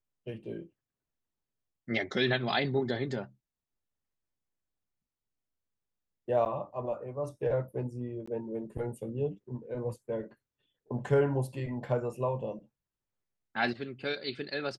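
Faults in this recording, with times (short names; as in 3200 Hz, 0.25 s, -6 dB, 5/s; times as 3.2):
6.45–6.46 gap 8.8 ms
8.26–8.28 gap 15 ms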